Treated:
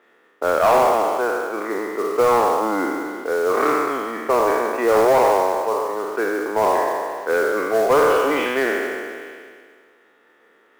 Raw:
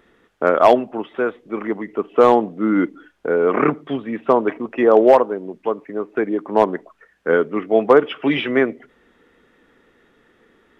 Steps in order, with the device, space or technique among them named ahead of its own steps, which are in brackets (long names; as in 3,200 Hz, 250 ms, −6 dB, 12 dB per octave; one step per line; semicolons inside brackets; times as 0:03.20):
peak hold with a decay on every bin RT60 1.95 s
carbon microphone (band-pass filter 450–3,500 Hz; soft clipping −9.5 dBFS, distortion −11 dB; noise that follows the level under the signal 14 dB)
low-pass filter 3,800 Hz 6 dB per octave
low-shelf EQ 130 Hz −3.5 dB
dynamic equaliser 3,000 Hz, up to −5 dB, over −40 dBFS, Q 1.4